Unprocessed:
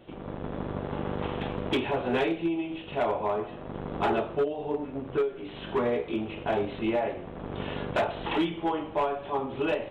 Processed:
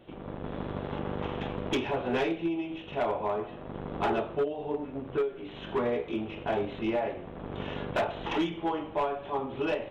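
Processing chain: tracing distortion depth 0.033 ms; 0.46–0.99 high shelf 3400 Hz +8.5 dB; gain -2 dB

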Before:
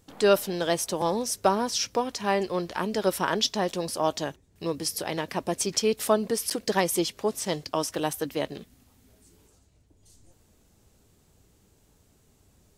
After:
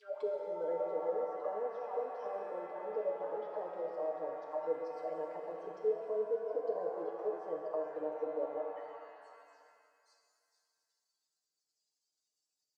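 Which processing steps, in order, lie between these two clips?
reverse delay 0.287 s, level -9 dB; low shelf 160 Hz -12 dB; on a send: reverse echo 0.227 s -15.5 dB; on the sum: spectral gate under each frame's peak -15 dB strong; treble ducked by the level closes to 1600 Hz, closed at -23 dBFS; limiter -19 dBFS, peak gain reduction 9 dB; short-mantissa float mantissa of 2-bit; auto-wah 510–5000 Hz, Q 6.9, down, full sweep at -29.5 dBFS; comb 6.6 ms, depth 77%; shimmer reverb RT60 2.2 s, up +7 st, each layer -8 dB, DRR 1.5 dB; gain -3 dB

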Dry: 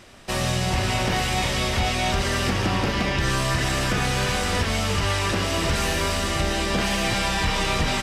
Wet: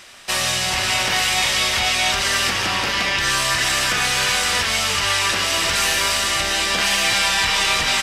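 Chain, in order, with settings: tilt shelf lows -9.5 dB, about 670 Hz

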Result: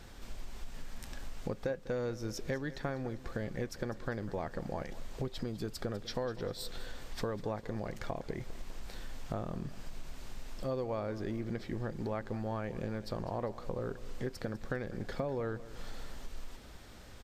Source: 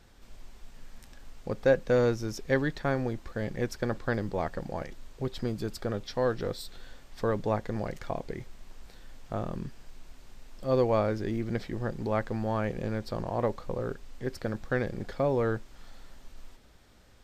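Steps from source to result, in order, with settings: compressor 6:1, threshold -41 dBFS, peak gain reduction 21.5 dB; feedback echo 0.199 s, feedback 57%, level -17 dB; gain +6.5 dB

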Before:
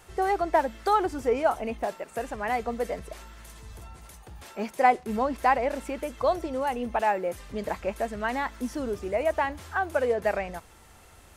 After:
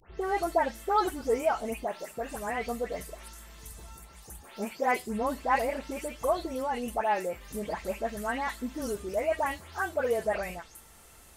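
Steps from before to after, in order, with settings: spectral delay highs late, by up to 0.211 s; high shelf 6000 Hz +9.5 dB; crackle 16/s -47 dBFS; on a send: reverb, pre-delay 5 ms, DRR 17 dB; on the sum: gain -3 dB

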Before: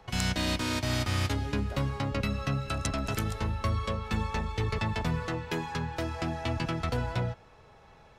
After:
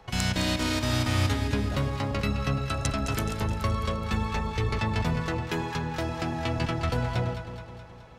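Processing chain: echo with dull and thin repeats by turns 0.106 s, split 930 Hz, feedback 76%, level -7 dB; gain +2 dB

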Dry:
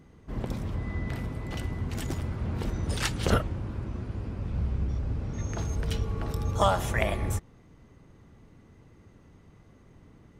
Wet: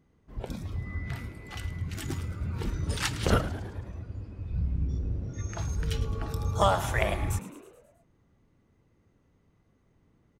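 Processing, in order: spectral noise reduction 12 dB; frequency-shifting echo 0.107 s, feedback 57%, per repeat +98 Hz, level -15 dB

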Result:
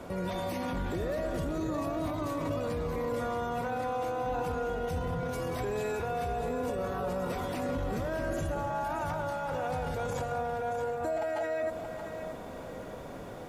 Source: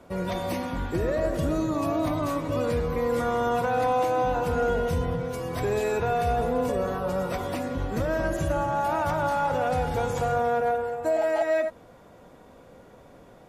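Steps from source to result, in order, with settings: limiter -34 dBFS, peak gain reduction 17.5 dB; lo-fi delay 0.626 s, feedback 35%, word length 12-bit, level -8.5 dB; gain +7.5 dB

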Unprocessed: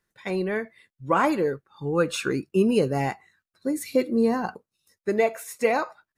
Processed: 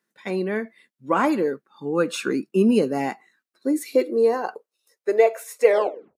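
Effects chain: tape stop at the end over 0.52 s; low shelf 140 Hz -10 dB; high-pass sweep 220 Hz -> 460 Hz, 3.01–4.55

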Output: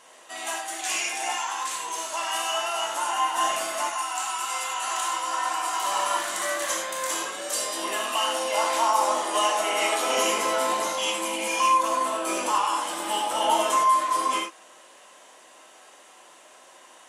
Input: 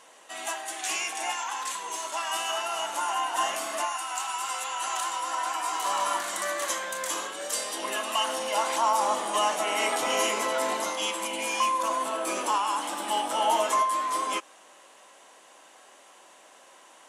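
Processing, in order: 8.07–10.17 HPF 230 Hz 24 dB/oct; non-linear reverb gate 0.12 s flat, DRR 1 dB

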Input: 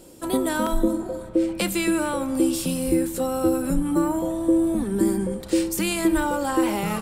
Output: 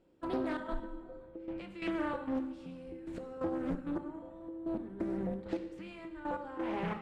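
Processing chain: Chebyshev low-pass 2200 Hz, order 2; compressor, threshold -24 dBFS, peak gain reduction 8 dB; step gate "..xxx.x......x" 132 bpm -12 dB; plate-style reverb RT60 1.2 s, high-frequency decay 0.95×, DRR 6.5 dB; Doppler distortion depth 0.37 ms; gain -7.5 dB

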